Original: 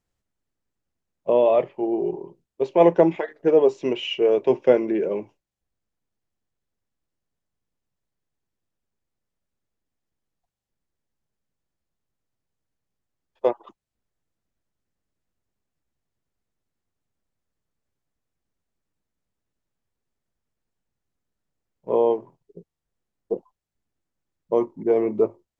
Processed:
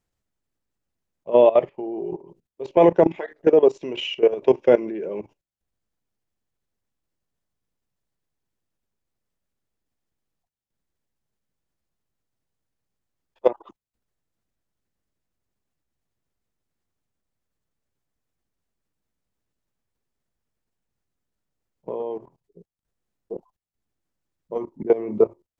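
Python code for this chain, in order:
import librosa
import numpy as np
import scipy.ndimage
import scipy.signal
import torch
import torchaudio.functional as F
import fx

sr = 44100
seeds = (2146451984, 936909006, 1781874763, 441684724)

y = fx.level_steps(x, sr, step_db=17)
y = F.gain(torch.from_numpy(y), 5.0).numpy()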